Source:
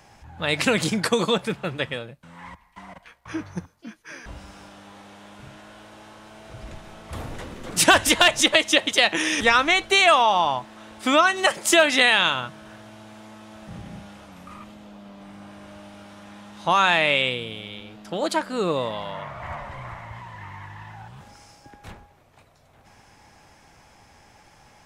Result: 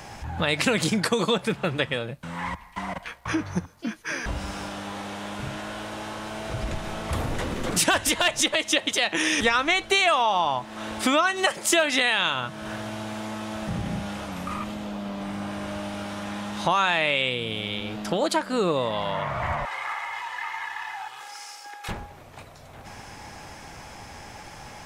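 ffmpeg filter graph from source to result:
-filter_complex "[0:a]asettb=1/sr,asplit=3[a][b][c];[a]atrim=end=19.654[d];[b]atrim=start=19.65:end=21.89,asetpts=PTS-STARTPTS,afade=t=in:d=0.004:c=qsin,afade=t=out:st=2.236:d=0.004:c=qsin,aeval=exprs='if(lt(val(0),0),0.708*val(0),val(0))':c=same,highpass=1k,aecho=1:1:2.4:0.68,atrim=end_sample=98784[e];[c]atrim=start=21.886[f];[d][e]acrossfade=d=0.004:c1=hsin:c2=qsin[g];[g][f]acrossfade=d=0.004:c1=qsin:c2=hsin,acompressor=threshold=-37dB:ratio=2.5,alimiter=level_in=19.5dB:limit=-1dB:release=50:level=0:latency=1,volume=-8.5dB"

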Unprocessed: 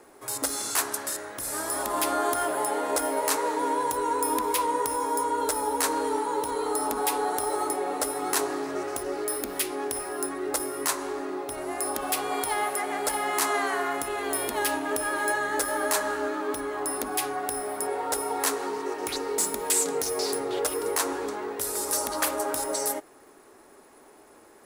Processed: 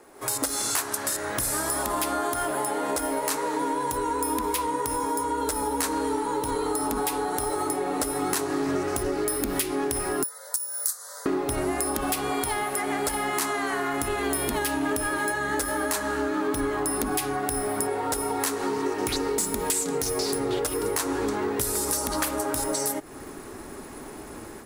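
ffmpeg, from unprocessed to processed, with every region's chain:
-filter_complex "[0:a]asettb=1/sr,asplit=3[a][b][c];[a]atrim=end=10.234[d];[b]atrim=start=10.23:end=11.26,asetpts=PTS-STARTPTS,afade=t=in:d=0.004:c=qsin,afade=t=out:st=1.026:d=0.004:c=qsin,aderivative,afreqshift=170,asuperstop=centerf=2600:order=4:qfactor=1.1[e];[c]atrim=start=11.256[f];[d][e]acrossfade=d=0.004:c1=hsin:c2=qsin[g];[g][f]acrossfade=d=0.004:c1=qsin:c2=hsin,acompressor=threshold=-37dB:ratio=6,asubboost=boost=4:cutoff=240,dynaudnorm=f=150:g=3:m=12.5dB"

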